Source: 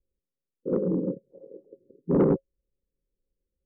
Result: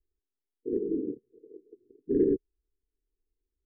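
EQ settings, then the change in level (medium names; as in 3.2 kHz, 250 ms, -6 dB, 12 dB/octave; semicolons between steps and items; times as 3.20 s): brick-wall FIR band-stop 490–1600 Hz; distance through air 290 m; static phaser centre 640 Hz, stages 6; 0.0 dB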